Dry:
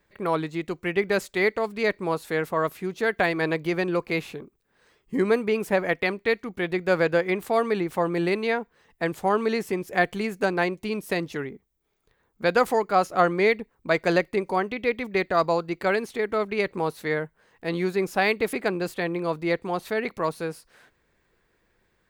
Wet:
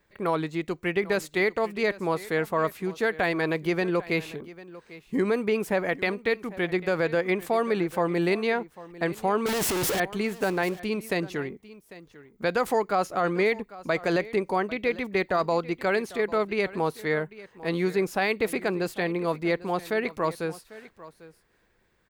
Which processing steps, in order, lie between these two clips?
0:09.46–0:10.00: sign of each sample alone
brickwall limiter −14.5 dBFS, peak gain reduction 8 dB
single-tap delay 797 ms −18.5 dB

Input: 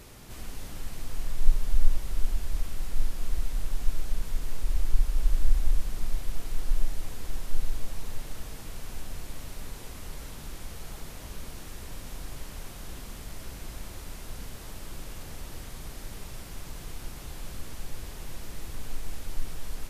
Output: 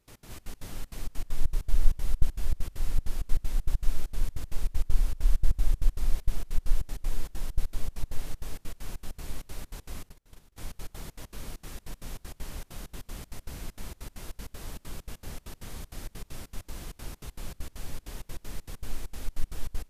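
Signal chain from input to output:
delay with a low-pass on its return 350 ms, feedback 36%, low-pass 460 Hz, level −5 dB
0:10.09–0:10.58: noise gate −33 dBFS, range −19 dB
gate pattern ".x.xx.x.xxx.xx" 196 BPM −24 dB

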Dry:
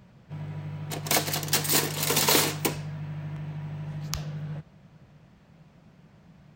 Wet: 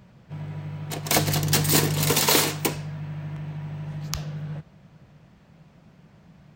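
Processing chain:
0:01.15–0:02.13: low-shelf EQ 260 Hz +10.5 dB
level +2 dB

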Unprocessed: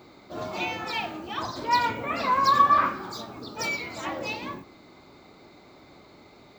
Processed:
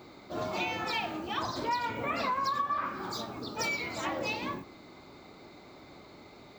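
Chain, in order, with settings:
downward compressor 10 to 1, threshold −28 dBFS, peak gain reduction 14.5 dB

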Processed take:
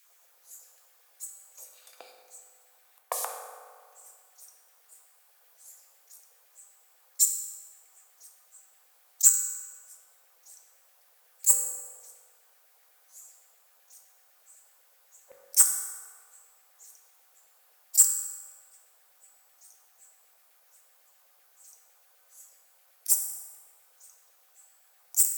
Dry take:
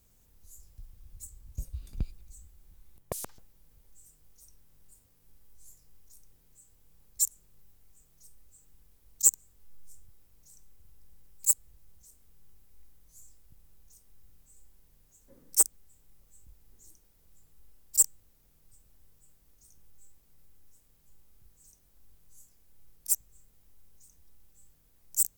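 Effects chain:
high-pass filter 420 Hz 24 dB per octave
in parallel at −2.5 dB: brickwall limiter −15.5 dBFS, peak gain reduction 9.5 dB
on the sum: auto-filter high-pass saw down 7.9 Hz 570–2,200 Hz
on a send at −2 dB: convolution reverb RT60 1.9 s, pre-delay 3 ms

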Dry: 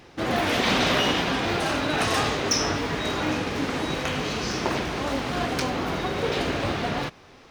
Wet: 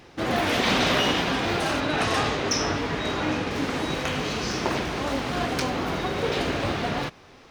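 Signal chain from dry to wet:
0:01.80–0:03.51: high-shelf EQ 8,500 Hz −9.5 dB

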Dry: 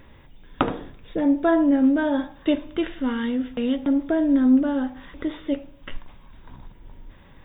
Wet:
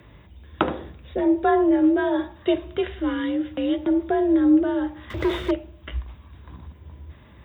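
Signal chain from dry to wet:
0:05.10–0:05.51: leveller curve on the samples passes 3
frequency shifter +49 Hz

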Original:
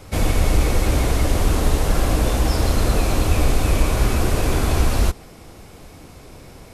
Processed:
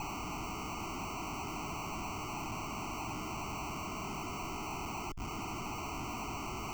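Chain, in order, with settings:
high-pass filter 330 Hz 24 dB per octave
downward compressor 6 to 1, threshold −41 dBFS, peak gain reduction 17.5 dB
comparator with hysteresis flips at −49 dBFS
tube saturation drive 54 dB, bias 0.6
decimation without filtering 26×
phaser with its sweep stopped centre 2,600 Hz, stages 8
level +18 dB

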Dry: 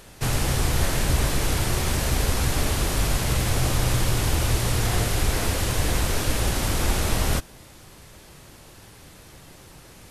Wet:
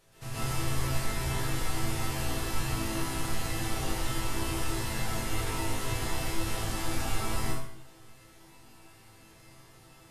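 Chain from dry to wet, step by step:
resonators tuned to a chord A2 minor, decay 0.49 s
dense smooth reverb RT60 0.65 s, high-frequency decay 0.6×, pre-delay 110 ms, DRR −8.5 dB

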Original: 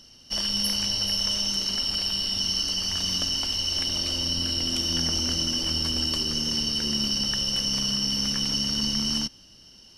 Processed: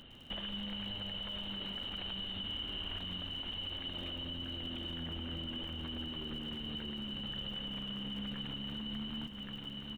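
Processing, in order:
downsampling to 8,000 Hz
single-tap delay 1,129 ms −15.5 dB
brickwall limiter −28.5 dBFS, peak gain reduction 11.5 dB
0:02.40–0:02.99: flutter between parallel walls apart 9.5 metres, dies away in 1.4 s
downward compressor 4 to 1, threshold −42 dBFS, peak gain reduction 11 dB
surface crackle 53 per second −52 dBFS
feedback echo at a low word length 108 ms, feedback 55%, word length 11 bits, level −15 dB
level +2.5 dB

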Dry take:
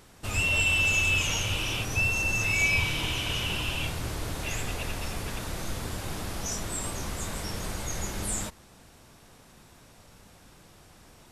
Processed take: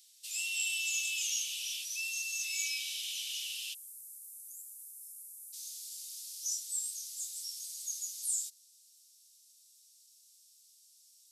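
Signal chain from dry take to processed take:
inverse Chebyshev high-pass filter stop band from 830 Hz, stop band 70 dB, from 0:03.73 stop band from 2,400 Hz, from 0:05.52 stop band from 1,100 Hz

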